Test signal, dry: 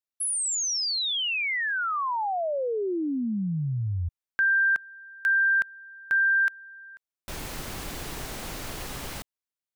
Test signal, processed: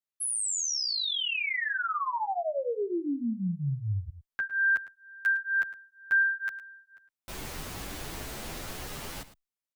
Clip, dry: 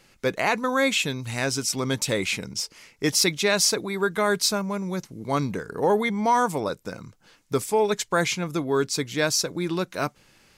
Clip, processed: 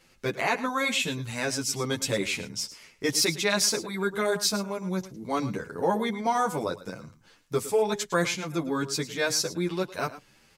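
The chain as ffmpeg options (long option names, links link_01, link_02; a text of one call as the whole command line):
ffmpeg -i in.wav -filter_complex "[0:a]asplit=2[link_01][link_02];[link_02]aecho=0:1:108:0.178[link_03];[link_01][link_03]amix=inputs=2:normalize=0,asplit=2[link_04][link_05];[link_05]adelay=9.6,afreqshift=2.1[link_06];[link_04][link_06]amix=inputs=2:normalize=1" out.wav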